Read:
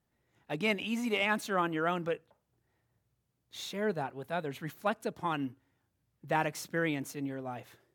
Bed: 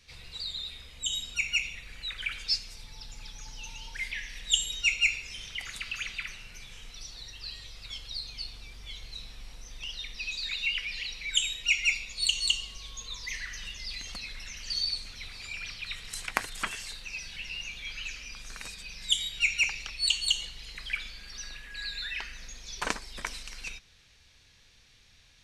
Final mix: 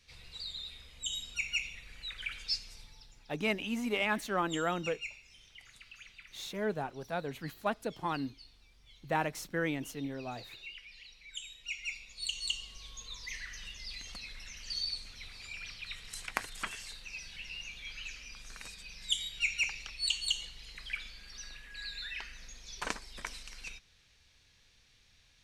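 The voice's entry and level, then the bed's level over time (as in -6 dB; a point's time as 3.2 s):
2.80 s, -1.5 dB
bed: 2.79 s -5.5 dB
3.25 s -17 dB
11.37 s -17 dB
12.83 s -5.5 dB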